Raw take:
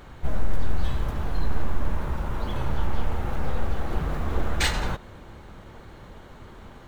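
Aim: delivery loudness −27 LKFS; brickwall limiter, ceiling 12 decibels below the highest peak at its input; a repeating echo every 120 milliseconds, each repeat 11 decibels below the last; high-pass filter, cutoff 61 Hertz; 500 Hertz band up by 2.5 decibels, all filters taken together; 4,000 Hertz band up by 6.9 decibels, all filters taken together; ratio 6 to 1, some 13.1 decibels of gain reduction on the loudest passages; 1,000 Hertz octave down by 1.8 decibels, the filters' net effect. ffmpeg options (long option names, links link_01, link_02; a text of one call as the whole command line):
ffmpeg -i in.wav -af "highpass=61,equalizer=frequency=500:width_type=o:gain=4,equalizer=frequency=1000:width_type=o:gain=-4,equalizer=frequency=4000:width_type=o:gain=8.5,acompressor=threshold=-31dB:ratio=6,alimiter=level_in=4.5dB:limit=-24dB:level=0:latency=1,volume=-4.5dB,aecho=1:1:120|240|360:0.282|0.0789|0.0221,volume=12dB" out.wav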